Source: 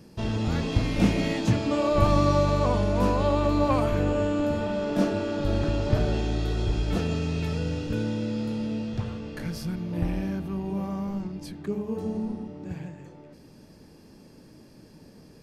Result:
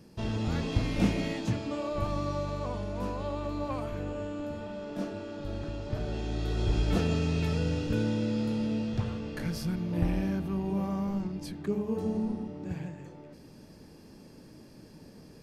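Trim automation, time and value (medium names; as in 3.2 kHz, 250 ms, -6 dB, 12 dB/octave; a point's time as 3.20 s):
0.99 s -4 dB
2.07 s -11 dB
5.90 s -11 dB
6.77 s -0.5 dB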